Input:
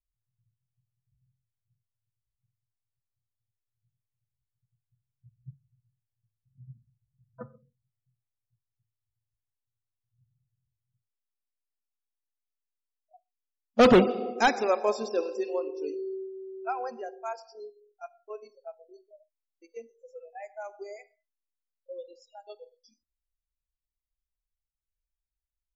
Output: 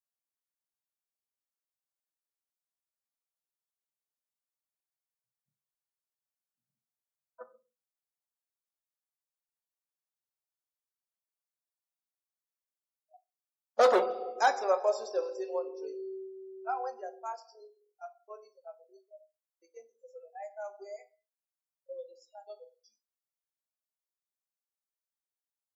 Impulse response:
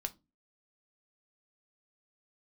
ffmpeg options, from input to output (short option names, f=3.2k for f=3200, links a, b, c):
-filter_complex "[0:a]highpass=f=490:w=0.5412,highpass=f=490:w=1.3066,equalizer=f=2.7k:t=o:w=0.93:g=-14[a];[1:a]atrim=start_sample=2205[b];[a][b]afir=irnorm=-1:irlink=0"